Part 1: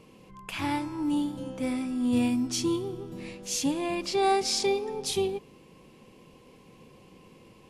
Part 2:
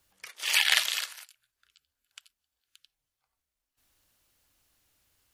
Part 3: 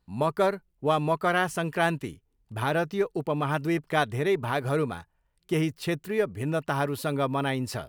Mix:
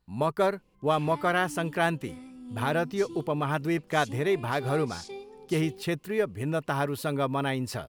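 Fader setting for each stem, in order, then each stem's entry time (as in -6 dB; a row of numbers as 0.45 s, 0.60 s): -15.0 dB, mute, -1.0 dB; 0.45 s, mute, 0.00 s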